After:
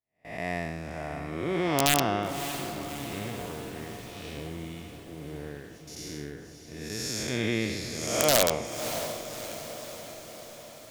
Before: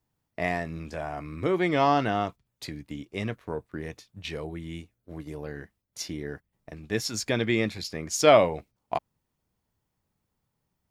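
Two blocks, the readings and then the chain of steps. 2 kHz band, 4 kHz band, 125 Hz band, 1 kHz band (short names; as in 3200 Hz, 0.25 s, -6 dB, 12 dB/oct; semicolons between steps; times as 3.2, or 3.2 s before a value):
-1.0 dB, +3.0 dB, -1.0 dB, -4.0 dB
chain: time blur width 0.293 s; wrapped overs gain 14.5 dB; high shelf 4200 Hz +8.5 dB; gate with hold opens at -38 dBFS; diffused feedback echo 0.601 s, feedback 60%, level -10 dB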